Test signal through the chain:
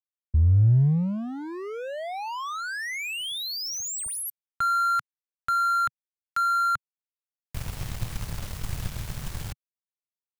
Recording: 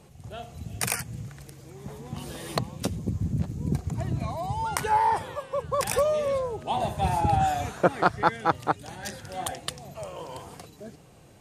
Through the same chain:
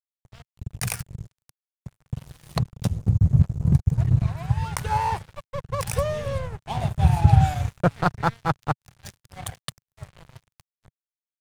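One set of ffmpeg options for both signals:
ffmpeg -i in.wav -af "aeval=exprs='sgn(val(0))*max(abs(val(0))-0.02,0)':channel_layout=same,lowshelf=frequency=190:width_type=q:width=1.5:gain=12.5" out.wav

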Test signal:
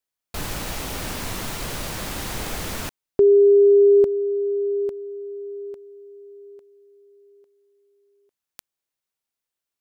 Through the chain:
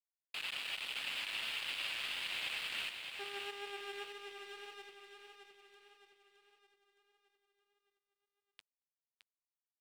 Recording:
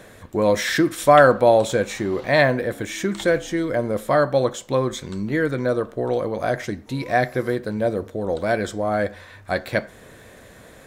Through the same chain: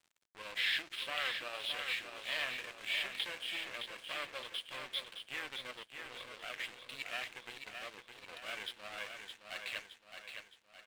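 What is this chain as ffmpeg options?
ffmpeg -i in.wav -filter_complex "[0:a]acompressor=threshold=-20dB:ratio=2.5:attack=0.3:release=52:knee=1:detection=rms,flanger=delay=6.5:depth=4.4:regen=66:speed=1.9:shape=triangular,aresample=11025,aeval=exprs='clip(val(0),-1,0.0168)':channel_layout=same,aresample=44100,bandpass=frequency=2800:width_type=q:width=3.7:csg=0,aeval=exprs='sgn(val(0))*max(abs(val(0))-0.00141,0)':channel_layout=same,asplit=2[link_01][link_02];[link_02]aecho=0:1:616|1232|1848|2464|3080|3696:0.473|0.227|0.109|0.0523|0.0251|0.0121[link_03];[link_01][link_03]amix=inputs=2:normalize=0,volume=9.5dB" out.wav

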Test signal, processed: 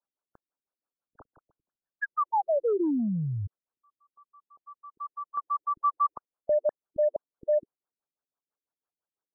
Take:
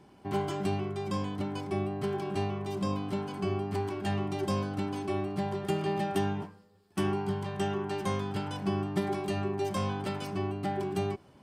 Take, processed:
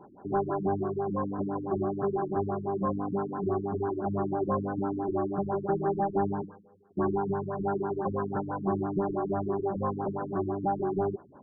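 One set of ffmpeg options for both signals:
ffmpeg -i in.wav -filter_complex "[0:a]asplit=2[link_01][link_02];[link_02]highpass=frequency=720:poles=1,volume=18dB,asoftclip=type=tanh:threshold=-16dB[link_03];[link_01][link_03]amix=inputs=2:normalize=0,lowpass=frequency=1900:poles=1,volume=-6dB,lowpass=2400,afftfilt=real='re*lt(b*sr/1024,330*pow(1800/330,0.5+0.5*sin(2*PI*6*pts/sr)))':imag='im*lt(b*sr/1024,330*pow(1800/330,0.5+0.5*sin(2*PI*6*pts/sr)))':win_size=1024:overlap=0.75" out.wav

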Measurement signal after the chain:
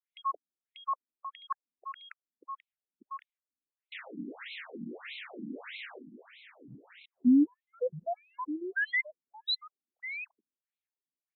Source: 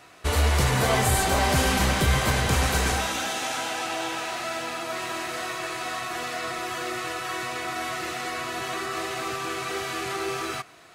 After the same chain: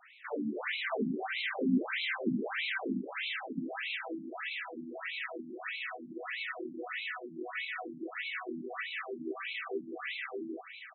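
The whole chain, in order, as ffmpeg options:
ffmpeg -i in.wav -filter_complex "[0:a]equalizer=frequency=250:width_type=o:width=1:gain=7,equalizer=frequency=1000:width_type=o:width=1:gain=-9,equalizer=frequency=2000:width_type=o:width=1:gain=5,aecho=1:1:1076:0.282,acrossover=split=380[link_01][link_02];[link_02]asoftclip=type=tanh:threshold=-22dB[link_03];[link_01][link_03]amix=inputs=2:normalize=0,afftfilt=real='re*between(b*sr/1024,230*pow(3000/230,0.5+0.5*sin(2*PI*1.6*pts/sr))/1.41,230*pow(3000/230,0.5+0.5*sin(2*PI*1.6*pts/sr))*1.41)':imag='im*between(b*sr/1024,230*pow(3000/230,0.5+0.5*sin(2*PI*1.6*pts/sr))/1.41,230*pow(3000/230,0.5+0.5*sin(2*PI*1.6*pts/sr))*1.41)':win_size=1024:overlap=0.75,volume=-2dB" out.wav

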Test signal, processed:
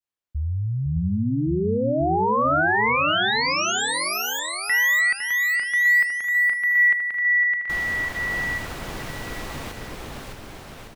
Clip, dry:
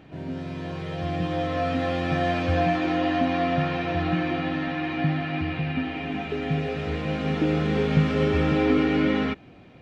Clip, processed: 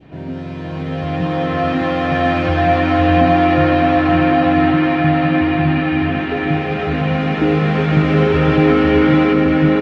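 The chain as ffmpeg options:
ffmpeg -i in.wav -filter_complex "[0:a]asplit=2[link_01][link_02];[link_02]aecho=0:1:610|1159|1653|2098|2498:0.631|0.398|0.251|0.158|0.1[link_03];[link_01][link_03]amix=inputs=2:normalize=0,adynamicequalizer=threshold=0.0141:dfrequency=1400:dqfactor=0.79:tfrequency=1400:tqfactor=0.79:attack=5:release=100:ratio=0.375:range=2:mode=boostabove:tftype=bell,acontrast=30,highshelf=frequency=5100:gain=-9,asplit=2[link_04][link_05];[link_05]adelay=507.3,volume=-6dB,highshelf=frequency=4000:gain=-11.4[link_06];[link_04][link_06]amix=inputs=2:normalize=0,volume=1dB" out.wav

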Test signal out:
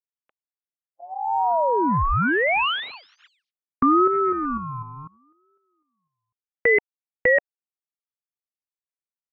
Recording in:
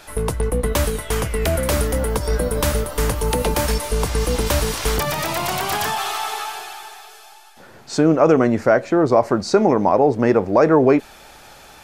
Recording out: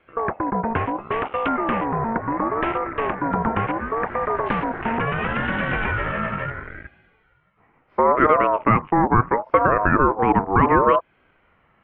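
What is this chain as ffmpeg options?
ffmpeg -i in.wav -filter_complex "[0:a]afwtdn=0.0398,highpass=frequency=160:width_type=q:width=0.5412,highpass=frequency=160:width_type=q:width=1.307,lowpass=frequency=2200:width_type=q:width=0.5176,lowpass=frequency=2200:width_type=q:width=0.7071,lowpass=frequency=2200:width_type=q:width=1.932,afreqshift=-95,asplit=2[link_01][link_02];[link_02]acompressor=threshold=-23dB:ratio=6,volume=1dB[link_03];[link_01][link_03]amix=inputs=2:normalize=0,aeval=exprs='val(0)*sin(2*PI*710*n/s+710*0.2/0.72*sin(2*PI*0.72*n/s))':channel_layout=same,volume=-1.5dB" out.wav

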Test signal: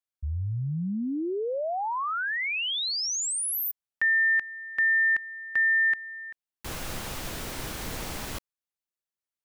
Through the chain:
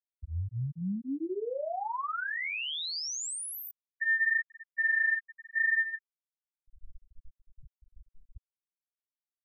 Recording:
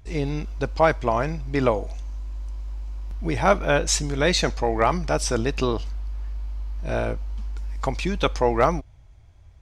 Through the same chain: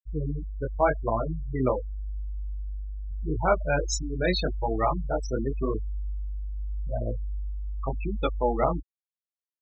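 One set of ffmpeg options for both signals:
ffmpeg -i in.wav -filter_complex "[0:a]flanger=delay=18:depth=5.8:speed=0.85,asplit=2[link_01][link_02];[link_02]adelay=97,lowpass=frequency=1400:poles=1,volume=-20.5dB,asplit=2[link_03][link_04];[link_04]adelay=97,lowpass=frequency=1400:poles=1,volume=0.4,asplit=2[link_05][link_06];[link_06]adelay=97,lowpass=frequency=1400:poles=1,volume=0.4[link_07];[link_01][link_03][link_05][link_07]amix=inputs=4:normalize=0,afftfilt=real='re*gte(hypot(re,im),0.126)':imag='im*gte(hypot(re,im),0.126)':win_size=1024:overlap=0.75,volume=-1.5dB" out.wav

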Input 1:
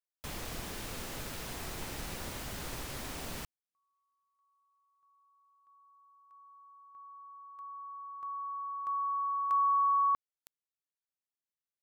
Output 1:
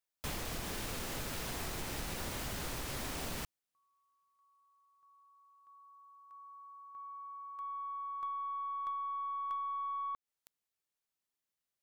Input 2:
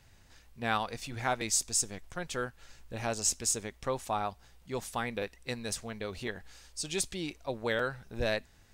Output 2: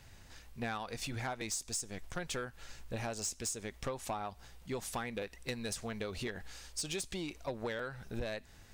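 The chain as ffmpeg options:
ffmpeg -i in.wav -af "acompressor=threshold=-42dB:ratio=10:attack=78:release=292:knee=1:detection=peak,aeval=exprs='(tanh(44.7*val(0)+0.1)-tanh(0.1))/44.7':channel_layout=same,volume=4dB" out.wav

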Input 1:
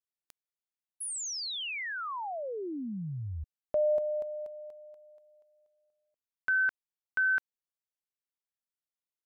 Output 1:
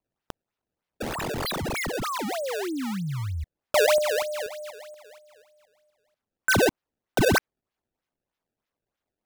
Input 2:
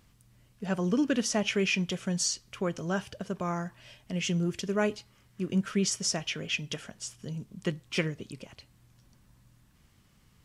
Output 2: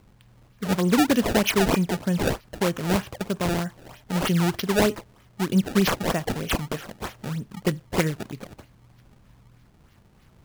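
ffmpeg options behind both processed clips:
ffmpeg -i in.wav -af "equalizer=frequency=8200:width_type=o:width=0.27:gain=-3,acrusher=samples=24:mix=1:aa=0.000001:lfo=1:lforange=38.4:lforate=3.2,volume=7dB" out.wav

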